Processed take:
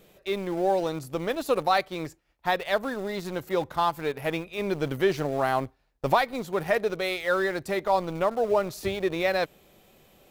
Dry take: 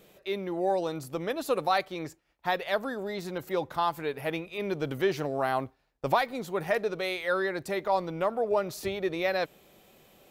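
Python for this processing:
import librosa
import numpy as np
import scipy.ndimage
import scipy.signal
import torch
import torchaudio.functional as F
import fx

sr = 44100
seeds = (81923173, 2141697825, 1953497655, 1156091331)

p1 = np.where(np.abs(x) >= 10.0 ** (-32.5 / 20.0), x, 0.0)
p2 = x + (p1 * 10.0 ** (-8.0 / 20.0))
y = fx.low_shelf(p2, sr, hz=82.0, db=8.5)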